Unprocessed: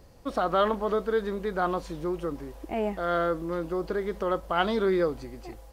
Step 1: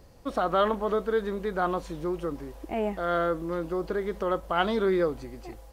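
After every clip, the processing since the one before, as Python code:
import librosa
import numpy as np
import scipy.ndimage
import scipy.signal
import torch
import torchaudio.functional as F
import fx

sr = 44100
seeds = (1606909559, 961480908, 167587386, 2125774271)

y = fx.dynamic_eq(x, sr, hz=4800.0, q=4.1, threshold_db=-58.0, ratio=4.0, max_db=-4)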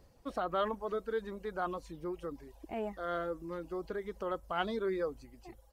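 y = fx.dereverb_blind(x, sr, rt60_s=0.91)
y = F.gain(torch.from_numpy(y), -8.0).numpy()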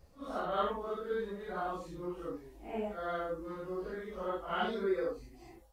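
y = fx.phase_scramble(x, sr, seeds[0], window_ms=200)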